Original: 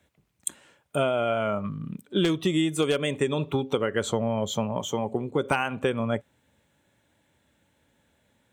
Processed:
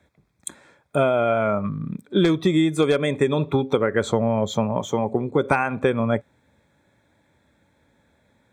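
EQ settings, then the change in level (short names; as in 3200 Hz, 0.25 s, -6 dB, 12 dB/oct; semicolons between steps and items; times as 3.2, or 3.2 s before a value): Butterworth band-stop 2900 Hz, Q 4.4; high shelf 6100 Hz -12 dB; +5.5 dB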